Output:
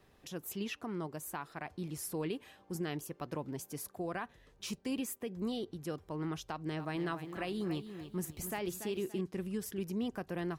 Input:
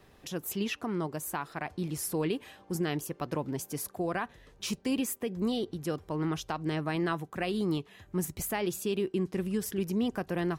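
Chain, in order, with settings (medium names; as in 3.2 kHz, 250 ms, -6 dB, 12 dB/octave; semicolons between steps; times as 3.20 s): 6.51–9.21 s: bit-crushed delay 286 ms, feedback 35%, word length 10-bit, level -10 dB; trim -6.5 dB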